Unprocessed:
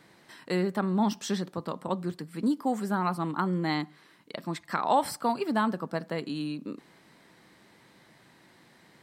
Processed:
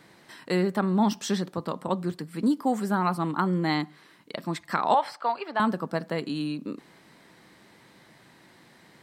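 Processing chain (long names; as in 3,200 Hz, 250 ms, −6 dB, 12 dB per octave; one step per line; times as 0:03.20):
0:04.94–0:05.60: three-way crossover with the lows and the highs turned down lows −22 dB, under 490 Hz, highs −22 dB, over 4,400 Hz
level +3 dB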